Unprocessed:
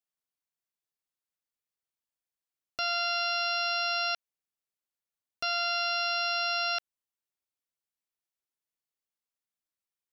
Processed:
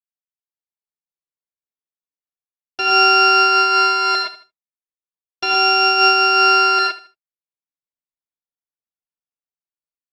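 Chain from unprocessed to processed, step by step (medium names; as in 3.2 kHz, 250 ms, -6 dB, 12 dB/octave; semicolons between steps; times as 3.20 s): drifting ripple filter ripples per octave 1.1, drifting -0.32 Hz, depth 10 dB; treble shelf 2.8 kHz +8.5 dB; comb 6.5 ms, depth 100%; level rider gain up to 16 dB; in parallel at -8 dB: sample-and-hold 14×; on the sum: distance through air 110 m; on a send: feedback delay 77 ms, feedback 29%, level -14.5 dB; on the sum: gated-style reverb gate 140 ms rising, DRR -1.5 dB; expander -31 dBFS; random flutter of the level, depth 55%; trim -5 dB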